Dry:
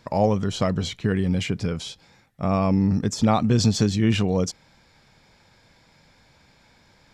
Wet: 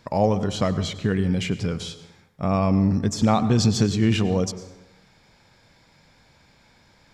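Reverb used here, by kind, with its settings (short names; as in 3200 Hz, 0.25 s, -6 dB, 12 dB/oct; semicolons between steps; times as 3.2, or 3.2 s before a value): plate-style reverb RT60 0.97 s, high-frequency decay 0.6×, pre-delay 85 ms, DRR 13 dB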